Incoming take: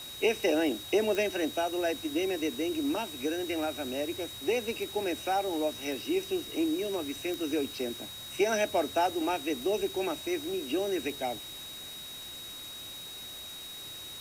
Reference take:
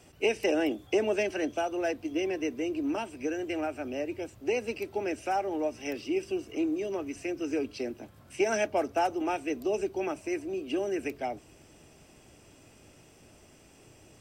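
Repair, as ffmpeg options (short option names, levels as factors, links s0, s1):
-af "adeclick=t=4,bandreject=f=3800:w=30,afftdn=nr=13:nf=-43"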